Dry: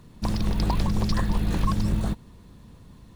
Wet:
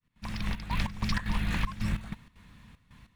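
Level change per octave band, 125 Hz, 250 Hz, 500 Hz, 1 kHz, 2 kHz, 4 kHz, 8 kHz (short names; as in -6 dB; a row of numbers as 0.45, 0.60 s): -8.0, -8.5, -13.5, -6.0, +3.5, -2.5, -6.5 dB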